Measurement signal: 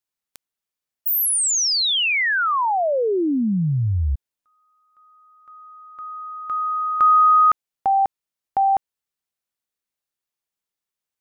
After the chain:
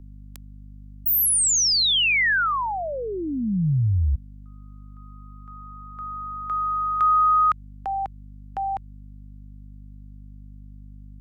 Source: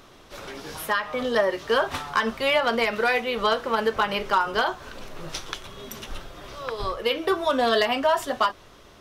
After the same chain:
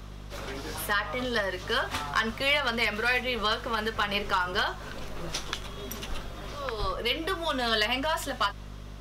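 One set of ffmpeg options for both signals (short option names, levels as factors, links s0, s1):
-filter_complex "[0:a]aeval=exprs='val(0)+0.00891*(sin(2*PI*50*n/s)+sin(2*PI*2*50*n/s)/2+sin(2*PI*3*50*n/s)/3+sin(2*PI*4*50*n/s)/4+sin(2*PI*5*50*n/s)/5)':c=same,acrossover=split=180|1300[s0][s1][s2];[s1]acompressor=threshold=0.0355:ratio=6:attack=0.66:release=311:knee=1:detection=peak[s3];[s0][s3][s2]amix=inputs=3:normalize=0"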